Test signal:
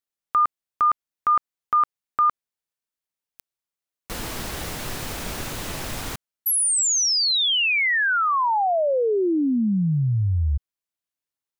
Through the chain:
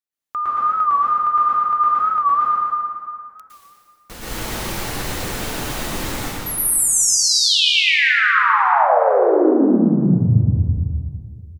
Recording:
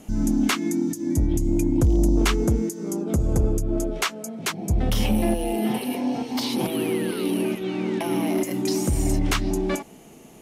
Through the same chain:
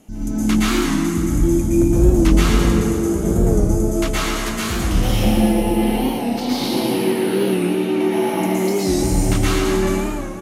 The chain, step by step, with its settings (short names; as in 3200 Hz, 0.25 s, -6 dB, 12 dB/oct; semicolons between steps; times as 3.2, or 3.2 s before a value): feedback echo 0.116 s, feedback 46%, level -7 dB; plate-style reverb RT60 2.2 s, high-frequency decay 0.65×, pre-delay 0.105 s, DRR -9.5 dB; record warp 45 rpm, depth 100 cents; gain -5 dB